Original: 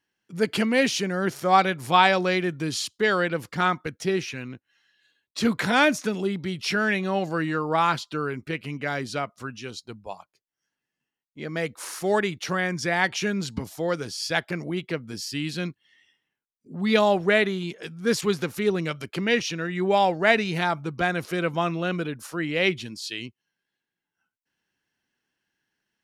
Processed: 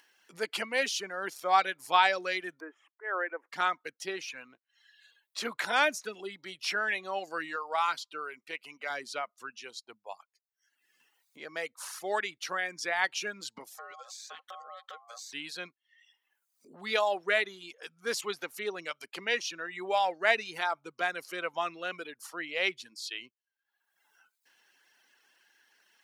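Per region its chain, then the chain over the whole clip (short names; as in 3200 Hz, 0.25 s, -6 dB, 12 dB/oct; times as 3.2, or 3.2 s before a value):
2.6–3.52 elliptic band-pass 320–1900 Hz + auto swell 0.164 s
7.56–8.9 low shelf 340 Hz -7.5 dB + notch 1700 Hz, Q 10
13.78–15.33 ripple EQ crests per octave 0.75, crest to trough 13 dB + compressor 8:1, threshold -33 dBFS + ring modulator 930 Hz
whole clip: reverb removal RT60 0.8 s; HPF 580 Hz 12 dB/oct; upward compressor, threshold -45 dBFS; gain -4.5 dB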